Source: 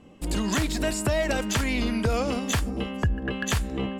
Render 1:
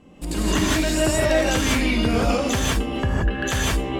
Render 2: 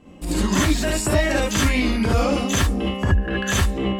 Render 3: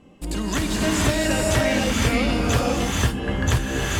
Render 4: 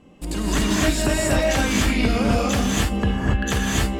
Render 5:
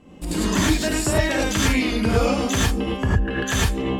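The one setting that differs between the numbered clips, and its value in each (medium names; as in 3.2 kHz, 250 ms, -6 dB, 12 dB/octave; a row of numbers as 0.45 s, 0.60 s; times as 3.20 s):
gated-style reverb, gate: 200 ms, 90 ms, 540 ms, 310 ms, 130 ms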